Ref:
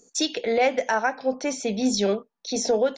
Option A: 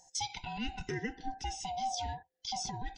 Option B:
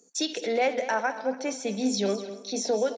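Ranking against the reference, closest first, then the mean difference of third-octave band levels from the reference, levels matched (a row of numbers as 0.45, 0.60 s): B, A; 3.5, 9.5 dB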